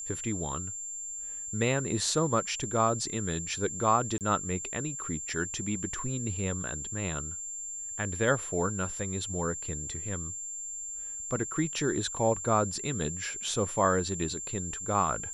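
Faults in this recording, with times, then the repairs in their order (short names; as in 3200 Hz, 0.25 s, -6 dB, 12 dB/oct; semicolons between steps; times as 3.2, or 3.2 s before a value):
tone 7300 Hz -36 dBFS
4.18–4.21 gap 28 ms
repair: notch 7300 Hz, Q 30; interpolate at 4.18, 28 ms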